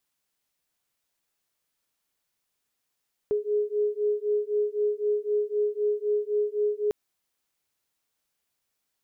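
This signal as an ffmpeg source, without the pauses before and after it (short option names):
-f lavfi -i "aevalsrc='0.0473*(sin(2*PI*416*t)+sin(2*PI*419.9*t))':d=3.6:s=44100"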